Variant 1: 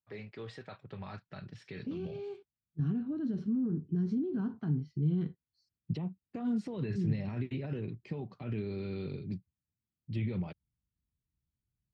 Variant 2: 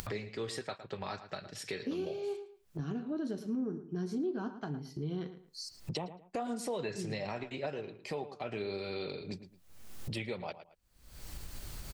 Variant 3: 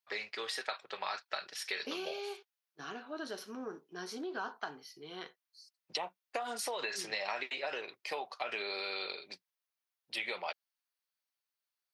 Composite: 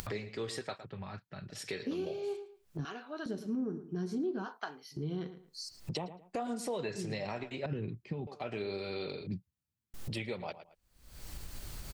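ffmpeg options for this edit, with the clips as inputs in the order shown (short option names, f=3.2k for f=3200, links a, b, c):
-filter_complex "[0:a]asplit=3[a][b][c];[2:a]asplit=2[d][e];[1:a]asplit=6[f][g][h][i][j][k];[f]atrim=end=0.852[l];[a]atrim=start=0.848:end=1.502[m];[g]atrim=start=1.498:end=2.852[n];[d]atrim=start=2.848:end=3.262[o];[h]atrim=start=3.258:end=4.47[p];[e]atrim=start=4.43:end=4.95[q];[i]atrim=start=4.91:end=7.662[r];[b]atrim=start=7.658:end=8.272[s];[j]atrim=start=8.268:end=9.272[t];[c]atrim=start=9.268:end=9.942[u];[k]atrim=start=9.938[v];[l][m]acrossfade=d=0.004:c1=hsin:c2=hsin[w];[w][n]acrossfade=d=0.004:c1=hsin:c2=hsin[x];[x][o]acrossfade=d=0.004:c1=hsin:c2=hsin[y];[y][p]acrossfade=d=0.004:c1=hsin:c2=hsin[z];[z][q]acrossfade=d=0.04:c1=tri:c2=tri[aa];[aa][r]acrossfade=d=0.04:c1=tri:c2=tri[ab];[ab][s]acrossfade=d=0.004:c1=hsin:c2=hsin[ac];[ac][t]acrossfade=d=0.004:c1=hsin:c2=hsin[ad];[ad][u]acrossfade=d=0.004:c1=hsin:c2=hsin[ae];[ae][v]acrossfade=d=0.004:c1=hsin:c2=hsin"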